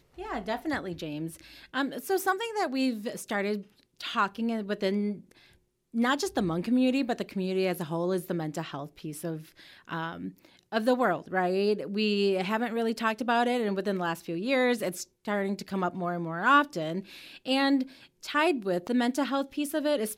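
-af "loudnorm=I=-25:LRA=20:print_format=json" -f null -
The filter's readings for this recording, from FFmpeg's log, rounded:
"input_i" : "-29.1",
"input_tp" : "-10.3",
"input_lra" : "4.6",
"input_thresh" : "-39.5",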